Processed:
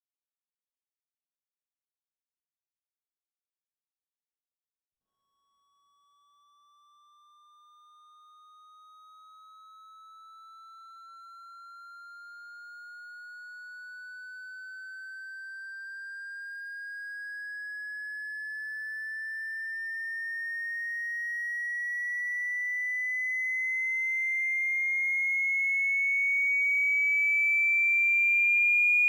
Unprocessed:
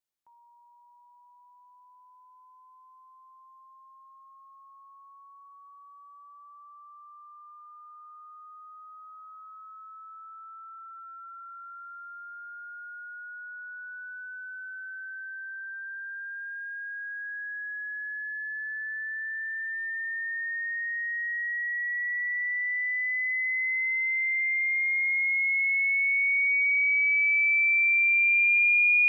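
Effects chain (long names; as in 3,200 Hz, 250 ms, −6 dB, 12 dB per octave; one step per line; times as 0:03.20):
reverb reduction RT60 0.57 s
slack as between gear wheels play −45.5 dBFS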